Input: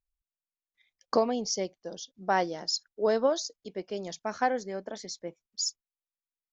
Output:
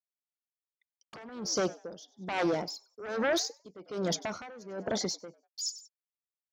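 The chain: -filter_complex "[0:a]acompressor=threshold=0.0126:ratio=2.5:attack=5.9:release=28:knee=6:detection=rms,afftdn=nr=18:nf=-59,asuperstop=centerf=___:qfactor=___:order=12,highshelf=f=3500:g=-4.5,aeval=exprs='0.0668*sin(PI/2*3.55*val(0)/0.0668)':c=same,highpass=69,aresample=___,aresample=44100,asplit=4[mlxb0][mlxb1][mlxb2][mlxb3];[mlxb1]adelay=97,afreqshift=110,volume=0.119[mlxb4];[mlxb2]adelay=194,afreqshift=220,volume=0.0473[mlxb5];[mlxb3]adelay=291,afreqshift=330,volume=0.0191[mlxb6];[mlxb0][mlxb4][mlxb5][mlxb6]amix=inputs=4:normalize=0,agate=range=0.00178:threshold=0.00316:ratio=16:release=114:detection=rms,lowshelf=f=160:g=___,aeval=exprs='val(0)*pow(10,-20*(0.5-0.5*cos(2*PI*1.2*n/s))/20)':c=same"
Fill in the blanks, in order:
1700, 3.9, 32000, 2.5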